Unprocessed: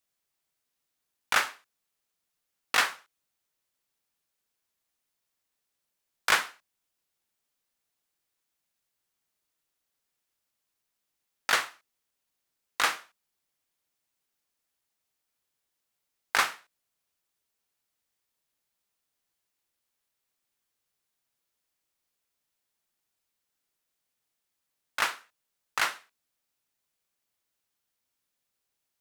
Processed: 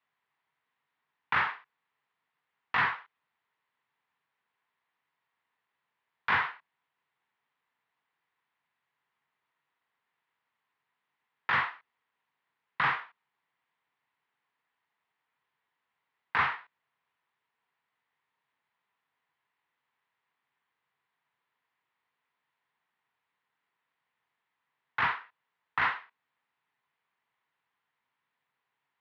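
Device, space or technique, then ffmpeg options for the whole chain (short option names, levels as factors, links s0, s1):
overdrive pedal into a guitar cabinet: -filter_complex "[0:a]asplit=2[s0][s1];[s1]highpass=f=720:p=1,volume=15.8,asoftclip=type=tanh:threshold=0.376[s2];[s0][s2]amix=inputs=2:normalize=0,lowpass=f=1200:p=1,volume=0.501,highpass=82,equalizer=f=89:t=q:w=4:g=7,equalizer=f=140:t=q:w=4:g=9,equalizer=f=330:t=q:w=4:g=-5,equalizer=f=580:t=q:w=4:g=-8,equalizer=f=990:t=q:w=4:g=7,equalizer=f=1900:t=q:w=4:g=6,lowpass=f=3600:w=0.5412,lowpass=f=3600:w=1.3066,volume=0.398"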